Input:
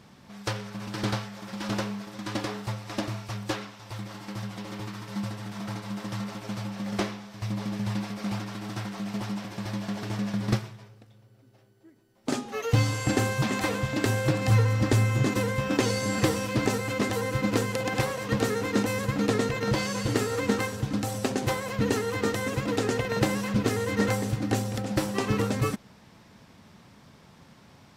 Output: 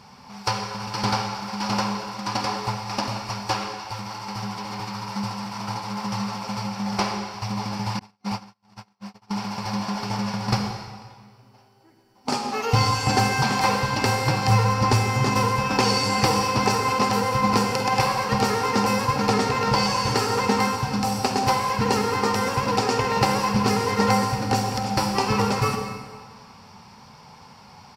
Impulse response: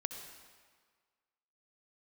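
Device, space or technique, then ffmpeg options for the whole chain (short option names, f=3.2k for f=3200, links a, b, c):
stairwell: -filter_complex "[0:a]asplit=2[a][b];[b]adelay=49,volume=-13.5dB[c];[a][c]amix=inputs=2:normalize=0,asplit=2[d][e];[e]adelay=176,lowpass=f=2k:p=1,volume=-17.5dB,asplit=2[f][g];[g]adelay=176,lowpass=f=2k:p=1,volume=0.33,asplit=2[h][i];[i]adelay=176,lowpass=f=2k:p=1,volume=0.33[j];[d][f][h][j]amix=inputs=4:normalize=0[k];[1:a]atrim=start_sample=2205[l];[k][l]afir=irnorm=-1:irlink=0,asettb=1/sr,asplit=3[m][n][o];[m]atrim=end=7.994[p];[n]atrim=start=7.99:end=9.31,asetpts=PTS-STARTPTS,afade=t=in:d=0.004:c=qsin,afade=t=out:st=1.316:d=0.004:c=qsin,agate=range=-48dB:threshold=-29dB:ratio=16:detection=peak[q];[o]atrim=start=9.306[r];[p][q]acrossfade=d=0.004:c1=hsin:c2=qsin[s];[s][r]acrossfade=d=0.004:c1=qsin:c2=hsin,superequalizer=6b=0.447:9b=3.55:10b=1.78:12b=1.58:14b=2.82,volume=3dB"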